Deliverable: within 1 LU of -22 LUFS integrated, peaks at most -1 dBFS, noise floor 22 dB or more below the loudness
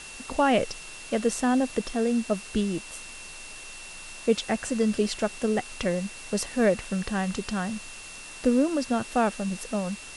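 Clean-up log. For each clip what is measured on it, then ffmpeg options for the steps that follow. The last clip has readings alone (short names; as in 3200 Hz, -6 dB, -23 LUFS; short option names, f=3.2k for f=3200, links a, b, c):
steady tone 2700 Hz; tone level -44 dBFS; noise floor -42 dBFS; noise floor target -49 dBFS; loudness -27.0 LUFS; peak -10.5 dBFS; loudness target -22.0 LUFS
-> -af "bandreject=f=2.7k:w=30"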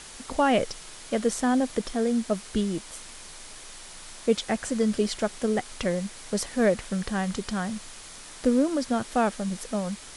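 steady tone none; noise floor -44 dBFS; noise floor target -49 dBFS
-> -af "afftdn=nr=6:nf=-44"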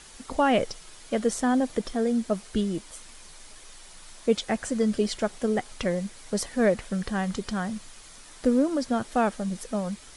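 noise floor -48 dBFS; noise floor target -50 dBFS
-> -af "afftdn=nr=6:nf=-48"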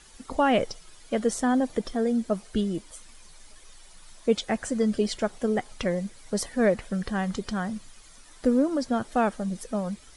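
noise floor -51 dBFS; loudness -27.5 LUFS; peak -10.5 dBFS; loudness target -22.0 LUFS
-> -af "volume=5.5dB"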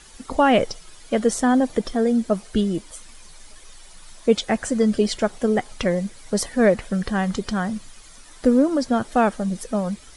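loudness -22.0 LUFS; peak -5.0 dBFS; noise floor -46 dBFS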